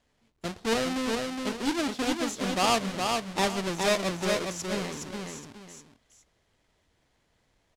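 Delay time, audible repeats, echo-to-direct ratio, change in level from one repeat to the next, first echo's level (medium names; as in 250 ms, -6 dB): 415 ms, 2, -3.5 dB, -10.5 dB, -4.0 dB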